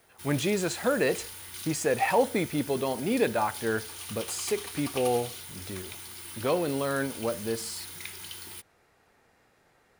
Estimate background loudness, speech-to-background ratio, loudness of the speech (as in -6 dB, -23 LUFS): -39.0 LUFS, 9.5 dB, -29.5 LUFS